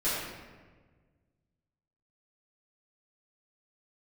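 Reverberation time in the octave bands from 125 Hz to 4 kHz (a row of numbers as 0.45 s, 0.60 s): 2.3 s, 1.8 s, 1.6 s, 1.3 s, 1.2 s, 0.90 s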